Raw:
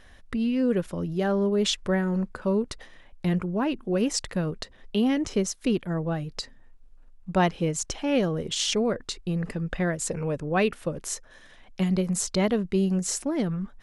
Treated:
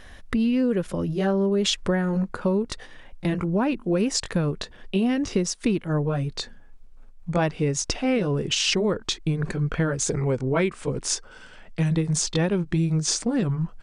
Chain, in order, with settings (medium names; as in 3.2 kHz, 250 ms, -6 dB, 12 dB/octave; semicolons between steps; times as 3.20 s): pitch bend over the whole clip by -3 st starting unshifted; compression, threshold -26 dBFS, peak gain reduction 7.5 dB; trim +7 dB